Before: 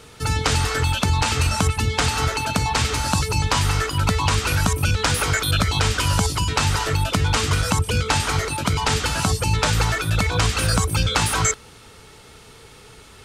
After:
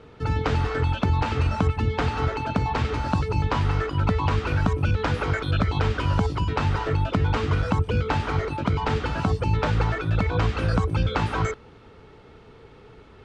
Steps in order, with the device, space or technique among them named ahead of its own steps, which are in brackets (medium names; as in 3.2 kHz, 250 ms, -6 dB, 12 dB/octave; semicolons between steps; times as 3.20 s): phone in a pocket (low-pass 3.7 kHz 12 dB/octave; peaking EQ 340 Hz +3.5 dB 1.3 oct; treble shelf 2.1 kHz -11 dB); trim -2 dB